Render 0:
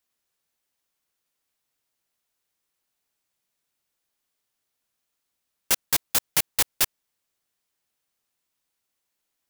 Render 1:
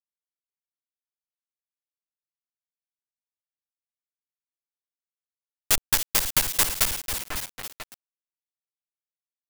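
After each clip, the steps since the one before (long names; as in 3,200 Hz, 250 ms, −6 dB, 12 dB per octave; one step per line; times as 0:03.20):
lower of the sound and its delayed copy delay 9.6 ms
echo with a time of its own for lows and highs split 2,300 Hz, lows 496 ms, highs 275 ms, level −9.5 dB
log-companded quantiser 2 bits
level −1 dB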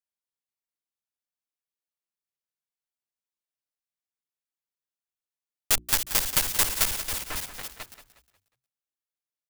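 mains-hum notches 60/120/180/240/300/360 Hz
on a send: echo with shifted repeats 180 ms, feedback 36%, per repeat −33 Hz, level −12 dB
on the sum: level −1.5 dB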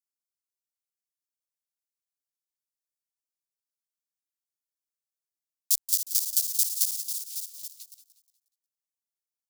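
inverse Chebyshev high-pass filter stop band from 1,400 Hz, stop band 60 dB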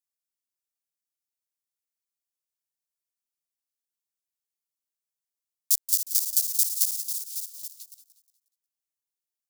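high-shelf EQ 2,900 Hz +9.5 dB
level −7.5 dB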